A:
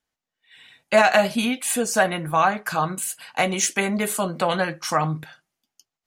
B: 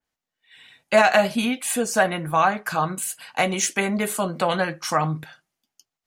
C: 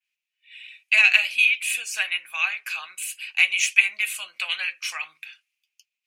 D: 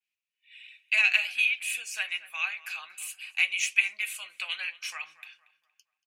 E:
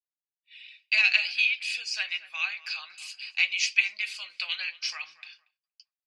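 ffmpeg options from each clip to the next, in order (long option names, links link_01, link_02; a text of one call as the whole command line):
ffmpeg -i in.wav -af "adynamicequalizer=threshold=0.0224:dfrequency=2900:dqfactor=0.7:tfrequency=2900:tqfactor=0.7:attack=5:release=100:ratio=0.375:range=1.5:mode=cutabove:tftype=highshelf" out.wav
ffmpeg -i in.wav -af "highpass=frequency=2500:width_type=q:width=9.2,volume=-4dB" out.wav
ffmpeg -i in.wav -filter_complex "[0:a]asplit=2[link_01][link_02];[link_02]adelay=233,lowpass=frequency=2200:poles=1,volume=-16.5dB,asplit=2[link_03][link_04];[link_04]adelay=233,lowpass=frequency=2200:poles=1,volume=0.41,asplit=2[link_05][link_06];[link_06]adelay=233,lowpass=frequency=2200:poles=1,volume=0.41,asplit=2[link_07][link_08];[link_08]adelay=233,lowpass=frequency=2200:poles=1,volume=0.41[link_09];[link_01][link_03][link_05][link_07][link_09]amix=inputs=5:normalize=0,volume=-6.5dB" out.wav
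ffmpeg -i in.wav -af "lowpass=frequency=4800:width_type=q:width=11,agate=range=-33dB:threshold=-51dB:ratio=3:detection=peak,volume=-2dB" out.wav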